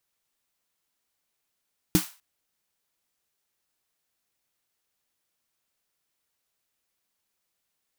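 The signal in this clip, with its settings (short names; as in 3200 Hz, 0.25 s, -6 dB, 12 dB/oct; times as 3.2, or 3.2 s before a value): snare drum length 0.25 s, tones 180 Hz, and 310 Hz, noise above 790 Hz, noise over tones -8.5 dB, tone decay 0.11 s, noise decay 0.34 s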